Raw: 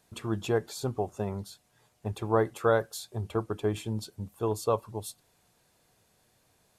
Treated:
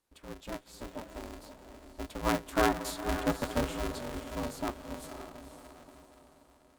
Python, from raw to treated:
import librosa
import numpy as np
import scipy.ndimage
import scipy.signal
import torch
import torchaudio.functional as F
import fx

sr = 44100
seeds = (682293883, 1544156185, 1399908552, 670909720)

y = fx.doppler_pass(x, sr, speed_mps=11, closest_m=6.5, pass_at_s=3.1)
y = fx.echo_diffused(y, sr, ms=526, feedback_pct=46, wet_db=-8.0)
y = y * np.sign(np.sin(2.0 * np.pi * 170.0 * np.arange(len(y)) / sr))